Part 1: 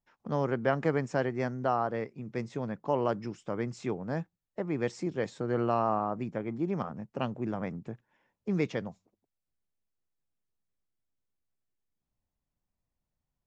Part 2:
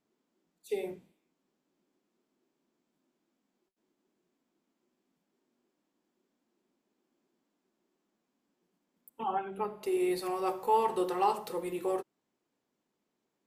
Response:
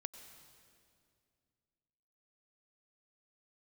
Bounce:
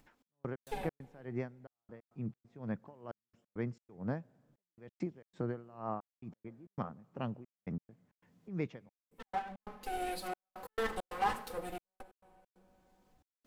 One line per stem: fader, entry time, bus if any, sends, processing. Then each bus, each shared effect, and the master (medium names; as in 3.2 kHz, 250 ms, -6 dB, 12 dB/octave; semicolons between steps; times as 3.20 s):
+1.0 dB, 0.00 s, send -16.5 dB, compression 4:1, threshold -35 dBFS, peak gain reduction 12 dB; tone controls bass +4 dB, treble -9 dB; logarithmic tremolo 2.2 Hz, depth 23 dB
-4.5 dB, 0.00 s, send -8 dB, comb filter that takes the minimum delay 3.9 ms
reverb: on, RT60 2.3 s, pre-delay 86 ms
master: trance gate "xx..x.xx.xxxx" 135 bpm -60 dB; upward compressor, threshold -58 dBFS